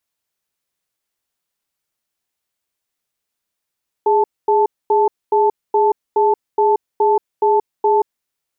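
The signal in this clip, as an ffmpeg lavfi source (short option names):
-f lavfi -i "aevalsrc='0.211*(sin(2*PI*415*t)+sin(2*PI*876*t))*clip(min(mod(t,0.42),0.18-mod(t,0.42))/0.005,0,1)':d=4.15:s=44100"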